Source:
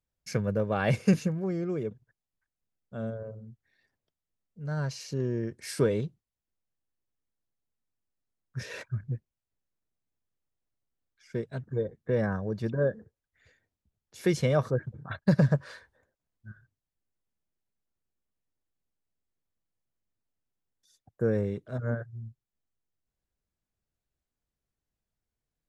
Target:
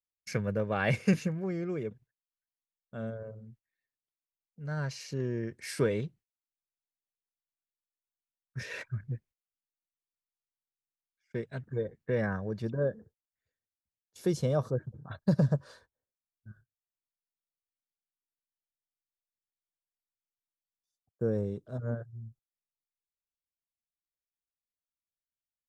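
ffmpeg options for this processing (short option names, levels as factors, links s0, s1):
-af "agate=range=0.1:threshold=0.00224:ratio=16:detection=peak,asetnsamples=n=441:p=0,asendcmd='12.62 equalizer g -5.5;14.2 equalizer g -12',equalizer=f=2100:w=1.4:g=6,volume=0.708"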